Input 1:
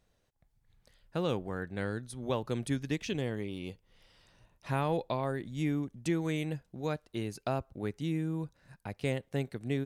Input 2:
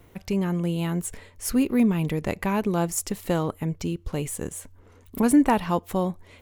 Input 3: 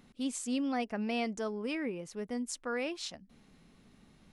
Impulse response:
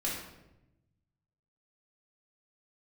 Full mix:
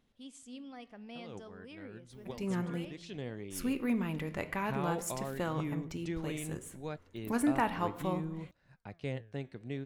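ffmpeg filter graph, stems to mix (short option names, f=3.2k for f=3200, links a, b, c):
-filter_complex "[0:a]lowpass=5.3k,volume=-2dB[a];[1:a]adynamicequalizer=threshold=0.00794:dfrequency=1600:dqfactor=0.71:tfrequency=1600:tqfactor=0.71:attack=5:release=100:ratio=0.375:range=4:mode=boostabove:tftype=bell,adelay=2100,volume=-9dB,asplit=3[b][c][d];[b]atrim=end=2.85,asetpts=PTS-STARTPTS,afade=t=out:st=2.846:d=0.004:c=hsin[e];[c]atrim=start=2.85:end=3.5,asetpts=PTS-STARTPTS,volume=0[f];[d]atrim=start=3.5,asetpts=PTS-STARTPTS,afade=t=in:d=0.004:c=hsin[g];[e][f][g]concat=n=3:v=0:a=1,asplit=2[h][i];[i]volume=-15.5dB[j];[2:a]equalizer=f=3.3k:w=7.1:g=8.5,volume=-11dB,asplit=3[k][l][m];[l]volume=-23.5dB[n];[m]apad=whole_len=434560[o];[a][o]sidechaincompress=threshold=-56dB:ratio=8:attack=32:release=100[p];[3:a]atrim=start_sample=2205[q];[j][n]amix=inputs=2:normalize=0[r];[r][q]afir=irnorm=-1:irlink=0[s];[p][h][k][s]amix=inputs=4:normalize=0,flanger=delay=2.2:depth=9.2:regen=89:speed=0.58:shape=triangular"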